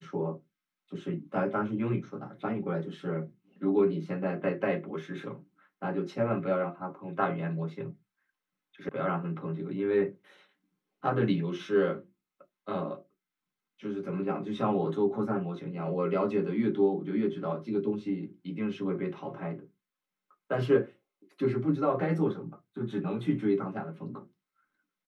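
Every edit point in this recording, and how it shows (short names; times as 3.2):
8.89 sound cut off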